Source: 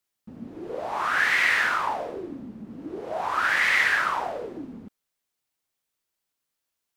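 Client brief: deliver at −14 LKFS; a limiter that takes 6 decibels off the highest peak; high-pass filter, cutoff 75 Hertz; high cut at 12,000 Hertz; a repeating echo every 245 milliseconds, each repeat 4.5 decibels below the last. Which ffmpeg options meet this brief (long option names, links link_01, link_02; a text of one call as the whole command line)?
ffmpeg -i in.wav -af "highpass=75,lowpass=12000,alimiter=limit=-15dB:level=0:latency=1,aecho=1:1:245|490|735|980|1225|1470|1715|1960|2205:0.596|0.357|0.214|0.129|0.0772|0.0463|0.0278|0.0167|0.01,volume=10.5dB" out.wav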